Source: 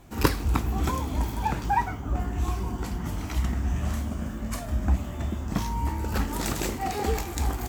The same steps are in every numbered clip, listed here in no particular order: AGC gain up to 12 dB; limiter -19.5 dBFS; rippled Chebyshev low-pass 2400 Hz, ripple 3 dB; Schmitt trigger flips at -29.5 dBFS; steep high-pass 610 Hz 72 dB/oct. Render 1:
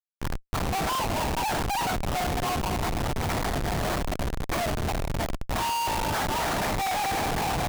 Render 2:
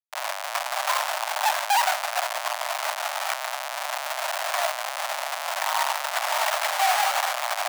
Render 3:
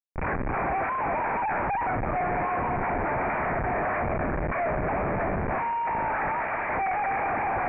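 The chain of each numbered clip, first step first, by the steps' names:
rippled Chebyshev low-pass > limiter > AGC > steep high-pass > Schmitt trigger; rippled Chebyshev low-pass > limiter > AGC > Schmitt trigger > steep high-pass; steep high-pass > limiter > AGC > Schmitt trigger > rippled Chebyshev low-pass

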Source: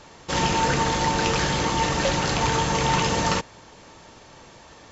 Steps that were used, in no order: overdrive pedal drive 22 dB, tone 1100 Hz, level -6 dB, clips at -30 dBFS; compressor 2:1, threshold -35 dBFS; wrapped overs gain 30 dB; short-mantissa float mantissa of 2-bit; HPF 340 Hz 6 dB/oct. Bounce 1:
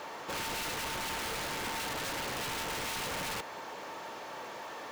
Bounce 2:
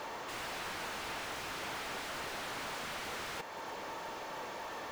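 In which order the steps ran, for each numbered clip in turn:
overdrive pedal > HPF > short-mantissa float > wrapped overs > compressor; compressor > wrapped overs > HPF > overdrive pedal > short-mantissa float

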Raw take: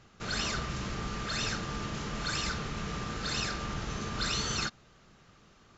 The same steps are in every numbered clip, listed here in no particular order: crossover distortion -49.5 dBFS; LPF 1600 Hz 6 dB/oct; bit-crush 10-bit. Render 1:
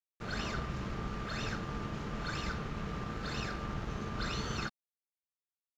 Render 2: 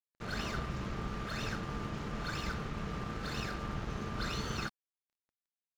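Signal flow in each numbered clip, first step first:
crossover distortion > bit-crush > LPF; bit-crush > LPF > crossover distortion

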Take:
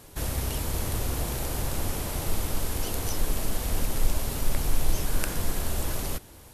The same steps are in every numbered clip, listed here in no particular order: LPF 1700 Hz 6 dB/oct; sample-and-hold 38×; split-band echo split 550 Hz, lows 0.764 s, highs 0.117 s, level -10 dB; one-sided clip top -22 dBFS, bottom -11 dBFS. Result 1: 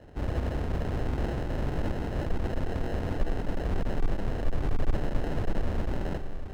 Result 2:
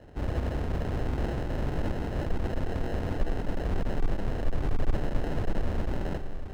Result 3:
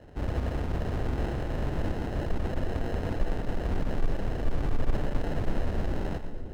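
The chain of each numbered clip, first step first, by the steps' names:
split-band echo > sample-and-hold > one-sided clip > LPF; split-band echo > one-sided clip > sample-and-hold > LPF; sample-and-hold > LPF > one-sided clip > split-band echo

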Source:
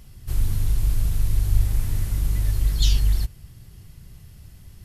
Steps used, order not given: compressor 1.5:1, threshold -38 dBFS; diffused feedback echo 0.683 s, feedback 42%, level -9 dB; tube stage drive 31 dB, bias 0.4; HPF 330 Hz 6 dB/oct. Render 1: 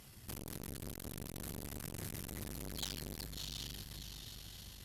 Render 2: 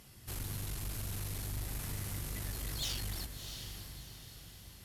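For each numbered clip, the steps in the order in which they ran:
diffused feedback echo > tube stage > HPF > compressor; HPF > tube stage > diffused feedback echo > compressor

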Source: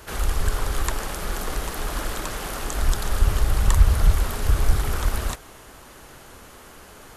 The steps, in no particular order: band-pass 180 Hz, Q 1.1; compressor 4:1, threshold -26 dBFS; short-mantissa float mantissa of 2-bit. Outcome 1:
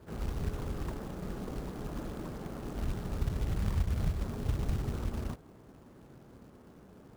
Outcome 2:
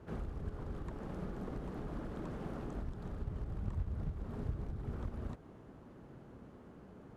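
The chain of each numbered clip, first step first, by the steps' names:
band-pass > compressor > short-mantissa float; compressor > short-mantissa float > band-pass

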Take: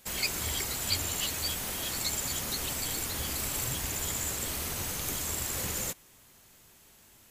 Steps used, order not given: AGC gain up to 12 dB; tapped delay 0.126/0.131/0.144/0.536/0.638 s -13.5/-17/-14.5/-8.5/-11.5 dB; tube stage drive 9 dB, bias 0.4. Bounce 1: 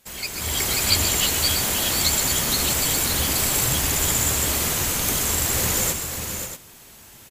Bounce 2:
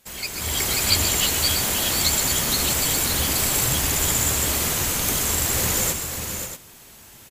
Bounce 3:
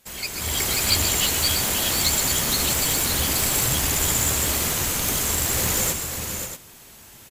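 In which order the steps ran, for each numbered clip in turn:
tube stage > tapped delay > AGC; tapped delay > tube stage > AGC; tapped delay > AGC > tube stage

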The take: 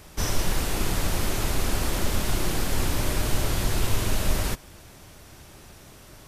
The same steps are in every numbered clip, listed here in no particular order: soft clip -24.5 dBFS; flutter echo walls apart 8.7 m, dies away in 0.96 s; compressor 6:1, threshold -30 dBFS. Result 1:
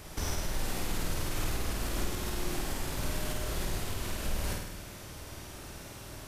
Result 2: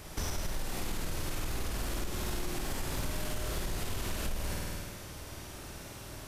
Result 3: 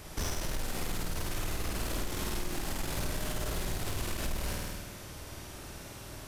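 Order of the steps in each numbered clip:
compressor > soft clip > flutter echo; flutter echo > compressor > soft clip; soft clip > flutter echo > compressor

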